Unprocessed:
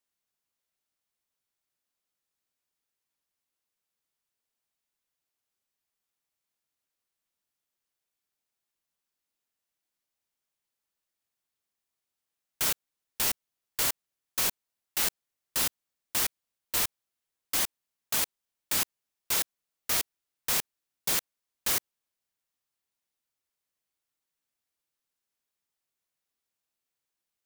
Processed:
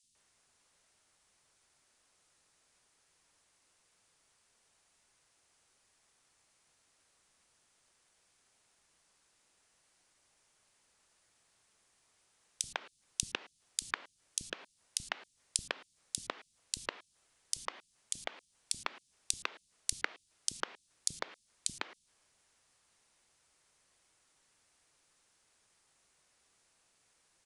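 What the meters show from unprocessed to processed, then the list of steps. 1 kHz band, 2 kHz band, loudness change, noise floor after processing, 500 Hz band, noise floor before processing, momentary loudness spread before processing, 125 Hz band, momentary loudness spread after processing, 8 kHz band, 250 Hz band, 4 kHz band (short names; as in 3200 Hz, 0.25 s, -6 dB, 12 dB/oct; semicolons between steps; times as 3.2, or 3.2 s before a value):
-5.0 dB, -5.5 dB, -10.5 dB, -74 dBFS, -6.0 dB, under -85 dBFS, 7 LU, -8.5 dB, 9 LU, -6.5 dB, -9.0 dB, -8.0 dB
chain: downsampling 22050 Hz; flipped gate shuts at -31 dBFS, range -36 dB; three bands offset in time highs, lows, mids 30/150 ms, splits 240/3400 Hz; gain +18 dB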